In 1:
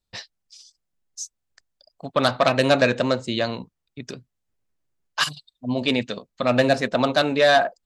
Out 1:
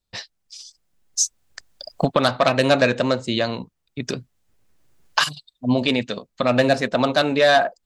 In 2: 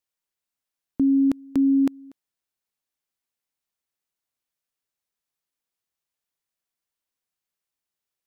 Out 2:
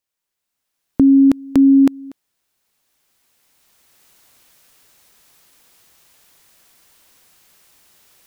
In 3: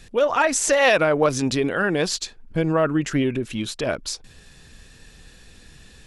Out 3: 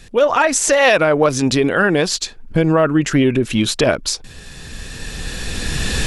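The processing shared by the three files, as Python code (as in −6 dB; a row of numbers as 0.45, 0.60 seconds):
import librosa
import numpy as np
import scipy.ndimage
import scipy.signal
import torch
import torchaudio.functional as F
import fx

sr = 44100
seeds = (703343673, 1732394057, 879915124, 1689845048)

y = fx.recorder_agc(x, sr, target_db=-9.5, rise_db_per_s=11.0, max_gain_db=30)
y = y * 10.0 ** (-2 / 20.0) / np.max(np.abs(y))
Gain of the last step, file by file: +1.0, +3.0, +4.0 decibels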